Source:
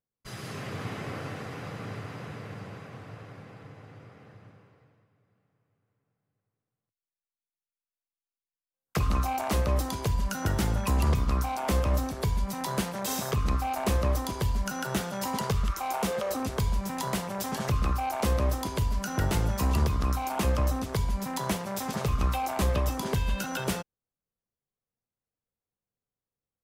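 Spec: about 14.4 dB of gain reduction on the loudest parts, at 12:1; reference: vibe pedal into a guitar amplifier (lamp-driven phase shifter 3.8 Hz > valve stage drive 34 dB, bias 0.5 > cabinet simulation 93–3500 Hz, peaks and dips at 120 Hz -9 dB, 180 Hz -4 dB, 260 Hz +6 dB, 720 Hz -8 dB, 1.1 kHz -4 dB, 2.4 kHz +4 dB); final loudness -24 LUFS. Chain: compression 12:1, threshold -36 dBFS; lamp-driven phase shifter 3.8 Hz; valve stage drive 34 dB, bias 0.5; cabinet simulation 93–3500 Hz, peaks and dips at 120 Hz -9 dB, 180 Hz -4 dB, 260 Hz +6 dB, 720 Hz -8 dB, 1.1 kHz -4 dB, 2.4 kHz +4 dB; trim +25 dB

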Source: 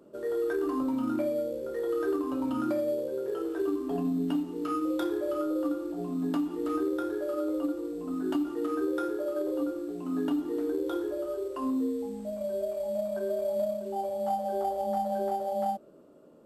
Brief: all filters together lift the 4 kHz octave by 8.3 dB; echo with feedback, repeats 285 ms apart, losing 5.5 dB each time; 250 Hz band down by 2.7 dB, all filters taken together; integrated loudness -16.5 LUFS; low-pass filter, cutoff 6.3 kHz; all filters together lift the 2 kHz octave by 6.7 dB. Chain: low-pass 6.3 kHz; peaking EQ 250 Hz -3.5 dB; peaking EQ 2 kHz +8.5 dB; peaking EQ 4 kHz +8 dB; feedback delay 285 ms, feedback 53%, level -5.5 dB; trim +14 dB

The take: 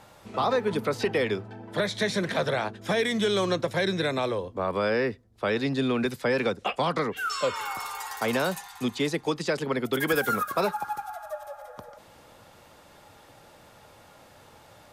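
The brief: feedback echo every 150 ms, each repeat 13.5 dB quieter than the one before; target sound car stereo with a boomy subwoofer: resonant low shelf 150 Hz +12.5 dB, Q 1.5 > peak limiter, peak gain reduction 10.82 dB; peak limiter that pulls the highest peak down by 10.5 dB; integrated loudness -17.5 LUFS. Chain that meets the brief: peak limiter -22.5 dBFS; resonant low shelf 150 Hz +12.5 dB, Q 1.5; feedback delay 150 ms, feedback 21%, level -13.5 dB; trim +19.5 dB; peak limiter -9 dBFS

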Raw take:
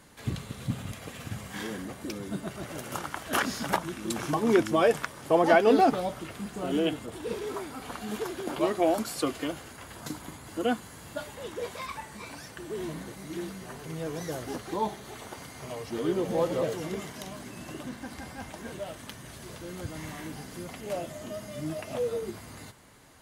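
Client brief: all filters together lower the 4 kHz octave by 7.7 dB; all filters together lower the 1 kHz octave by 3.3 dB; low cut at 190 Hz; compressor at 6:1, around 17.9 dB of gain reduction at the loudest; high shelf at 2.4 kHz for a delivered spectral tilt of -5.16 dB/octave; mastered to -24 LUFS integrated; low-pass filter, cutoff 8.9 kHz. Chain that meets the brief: high-pass 190 Hz; low-pass 8.9 kHz; peaking EQ 1 kHz -4 dB; treble shelf 2.4 kHz -3.5 dB; peaking EQ 4 kHz -7 dB; compression 6:1, threshold -38 dBFS; trim +19 dB

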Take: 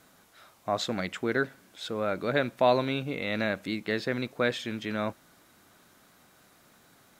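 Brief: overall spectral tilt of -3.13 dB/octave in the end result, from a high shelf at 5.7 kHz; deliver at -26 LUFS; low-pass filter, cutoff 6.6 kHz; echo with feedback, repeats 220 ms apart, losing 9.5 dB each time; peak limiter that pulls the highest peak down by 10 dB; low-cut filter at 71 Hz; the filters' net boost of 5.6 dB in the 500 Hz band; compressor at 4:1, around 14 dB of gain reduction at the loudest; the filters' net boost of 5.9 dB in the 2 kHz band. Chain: high-pass 71 Hz; low-pass 6.6 kHz; peaking EQ 500 Hz +6.5 dB; peaking EQ 2 kHz +8 dB; treble shelf 5.7 kHz -7 dB; compression 4:1, threshold -30 dBFS; peak limiter -25.5 dBFS; feedback delay 220 ms, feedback 33%, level -9.5 dB; trim +11 dB

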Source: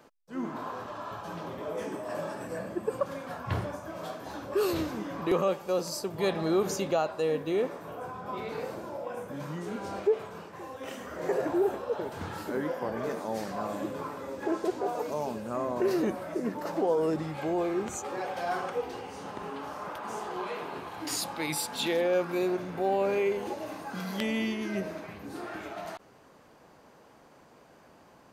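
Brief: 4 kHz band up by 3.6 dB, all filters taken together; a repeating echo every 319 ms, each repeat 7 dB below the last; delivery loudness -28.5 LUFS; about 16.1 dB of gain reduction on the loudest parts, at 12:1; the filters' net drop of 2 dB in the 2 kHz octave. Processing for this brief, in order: peaking EQ 2 kHz -4 dB; peaking EQ 4 kHz +5.5 dB; compression 12:1, threshold -38 dBFS; feedback delay 319 ms, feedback 45%, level -7 dB; trim +13 dB

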